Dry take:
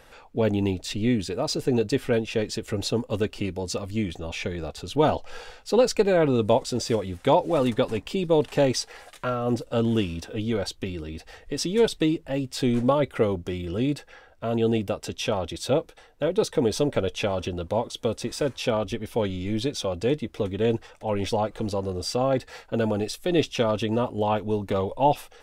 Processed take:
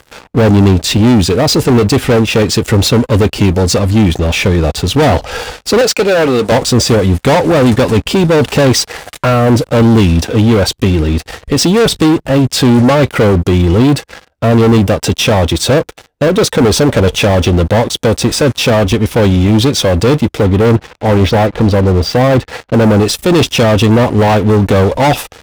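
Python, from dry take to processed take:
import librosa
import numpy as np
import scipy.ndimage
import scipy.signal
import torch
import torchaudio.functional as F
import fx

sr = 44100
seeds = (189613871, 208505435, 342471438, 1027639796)

y = fx.weighting(x, sr, curve='A', at=(5.81, 6.52))
y = fx.air_absorb(y, sr, metres=180.0, at=(20.41, 22.82))
y = fx.leveller(y, sr, passes=5)
y = scipy.signal.sosfilt(scipy.signal.butter(2, 53.0, 'highpass', fs=sr, output='sos'), y)
y = fx.low_shelf(y, sr, hz=190.0, db=7.0)
y = y * librosa.db_to_amplitude(2.0)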